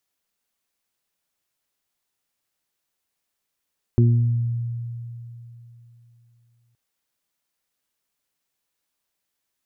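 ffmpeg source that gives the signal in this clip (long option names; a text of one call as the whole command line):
ffmpeg -f lavfi -i "aevalsrc='0.251*pow(10,-3*t/3.26)*sin(2*PI*118*t)+0.112*pow(10,-3*t/0.98)*sin(2*PI*236*t)+0.0891*pow(10,-3*t/0.49)*sin(2*PI*354*t)':duration=2.77:sample_rate=44100" out.wav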